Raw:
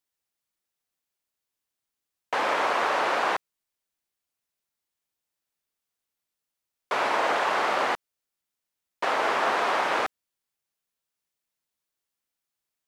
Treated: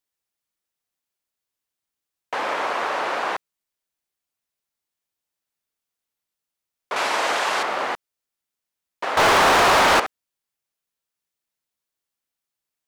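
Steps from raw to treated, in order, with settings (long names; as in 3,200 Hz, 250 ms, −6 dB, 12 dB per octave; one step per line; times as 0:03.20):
0:06.96–0:07.63: parametric band 8,900 Hz +12 dB 2.8 octaves
0:09.17–0:10.00: leveller curve on the samples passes 5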